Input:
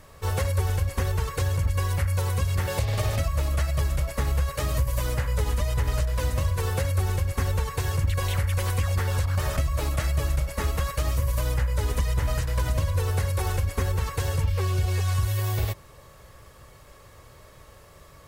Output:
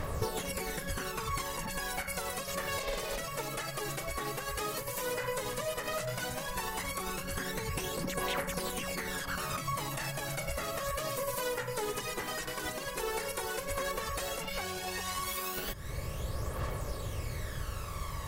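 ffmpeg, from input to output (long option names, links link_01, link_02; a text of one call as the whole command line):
ffmpeg -i in.wav -af "afftfilt=real='re*lt(hypot(re,im),0.2)':imag='im*lt(hypot(re,im),0.2)':win_size=1024:overlap=0.75,alimiter=limit=-24dB:level=0:latency=1:release=101,acompressor=threshold=-42dB:ratio=16,aphaser=in_gain=1:out_gain=1:delay=2.7:decay=0.52:speed=0.12:type=triangular,volume=8.5dB" out.wav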